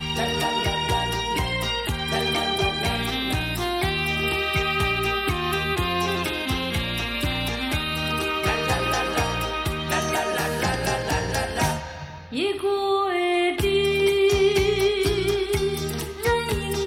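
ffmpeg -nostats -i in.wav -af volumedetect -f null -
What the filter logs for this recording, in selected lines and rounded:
mean_volume: -23.9 dB
max_volume: -9.1 dB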